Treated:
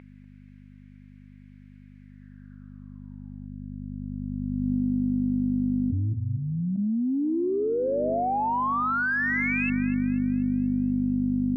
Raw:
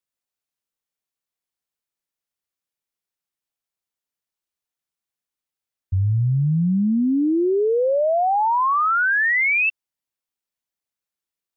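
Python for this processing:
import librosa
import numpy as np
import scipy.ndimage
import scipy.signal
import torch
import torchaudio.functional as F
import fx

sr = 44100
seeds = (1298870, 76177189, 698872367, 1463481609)

p1 = fx.graphic_eq_31(x, sr, hz=(200, 630, 1600), db=(-4, -10, 10))
p2 = fx.add_hum(p1, sr, base_hz=50, snr_db=18)
p3 = fx.formant_cascade(p2, sr, vowel='a', at=(6.12, 6.77), fade=0.02)
p4 = p3 + fx.echo_thinned(p3, sr, ms=243, feedback_pct=41, hz=200.0, wet_db=-16.5, dry=0)
p5 = fx.spec_erase(p4, sr, start_s=3.47, length_s=0.54, low_hz=400.0, high_hz=1500.0)
p6 = fx.high_shelf(p5, sr, hz=2300.0, db=-8.0)
p7 = 10.0 ** (-17.5 / 20.0) * np.tanh(p6 / 10.0 ** (-17.5 / 20.0))
p8 = p6 + F.gain(torch.from_numpy(p7), -6.5).numpy()
p9 = fx.filter_sweep_bandpass(p8, sr, from_hz=2200.0, to_hz=260.0, start_s=2.01, end_s=4.79, q=6.0)
p10 = fx.env_flatten(p9, sr, amount_pct=100)
y = F.gain(torch.from_numpy(p10), -8.5).numpy()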